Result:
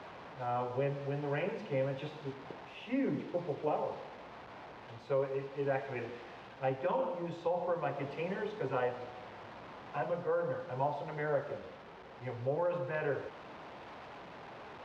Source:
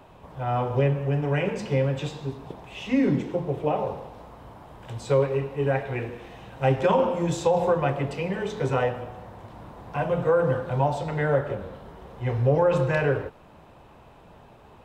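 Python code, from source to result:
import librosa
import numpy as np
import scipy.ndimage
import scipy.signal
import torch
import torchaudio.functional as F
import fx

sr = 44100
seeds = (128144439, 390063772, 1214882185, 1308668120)

y = fx.delta_mod(x, sr, bps=64000, step_db=-35.0)
y = fx.highpass(y, sr, hz=370.0, slope=6)
y = fx.peak_eq(y, sr, hz=5300.0, db=-2.0, octaves=2.4)
y = fx.rider(y, sr, range_db=3, speed_s=0.5)
y = fx.air_absorb(y, sr, metres=250.0)
y = y * 10.0 ** (-7.0 / 20.0)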